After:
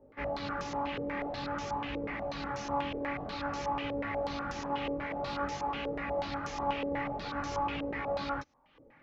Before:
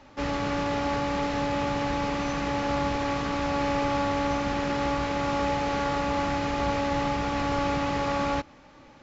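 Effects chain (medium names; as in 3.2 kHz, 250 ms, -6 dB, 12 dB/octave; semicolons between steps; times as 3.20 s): reverb removal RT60 0.68 s; chorus 0.51 Hz, delay 18 ms, depth 7.1 ms; 4.84–5.49 s: companded quantiser 6-bit; step-sequenced low-pass 8.2 Hz 470–6100 Hz; trim -6 dB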